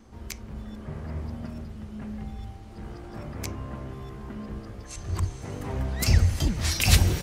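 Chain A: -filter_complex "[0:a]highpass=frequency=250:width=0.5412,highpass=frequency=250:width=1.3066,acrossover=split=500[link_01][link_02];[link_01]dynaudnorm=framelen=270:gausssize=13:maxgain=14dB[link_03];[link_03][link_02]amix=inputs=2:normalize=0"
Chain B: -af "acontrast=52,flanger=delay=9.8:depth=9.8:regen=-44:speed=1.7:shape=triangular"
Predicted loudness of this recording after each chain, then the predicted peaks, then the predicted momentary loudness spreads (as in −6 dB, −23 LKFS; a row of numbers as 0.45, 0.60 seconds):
−31.5, −28.0 LKFS; −9.0, −6.0 dBFS; 15, 16 LU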